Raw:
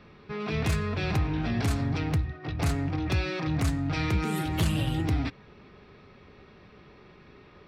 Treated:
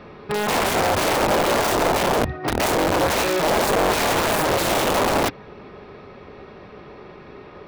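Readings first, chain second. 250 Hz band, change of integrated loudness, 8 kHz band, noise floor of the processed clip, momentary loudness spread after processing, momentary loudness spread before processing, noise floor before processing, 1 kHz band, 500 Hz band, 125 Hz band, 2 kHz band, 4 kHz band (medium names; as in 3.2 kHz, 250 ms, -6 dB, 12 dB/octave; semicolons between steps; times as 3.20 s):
+4.0 dB, +9.0 dB, +16.5 dB, -42 dBFS, 4 LU, 3 LU, -54 dBFS, +17.0 dB, +16.5 dB, -4.0 dB, +12.0 dB, +13.0 dB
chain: integer overflow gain 26 dB; peaking EQ 630 Hz +9.5 dB 2.4 oct; trim +6 dB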